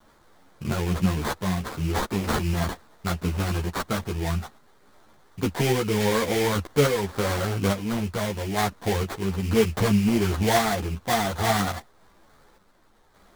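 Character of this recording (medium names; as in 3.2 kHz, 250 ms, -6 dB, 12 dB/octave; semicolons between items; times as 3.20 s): a quantiser's noise floor 10-bit, dither triangular; random-step tremolo; aliases and images of a low sample rate 2.7 kHz, jitter 20%; a shimmering, thickened sound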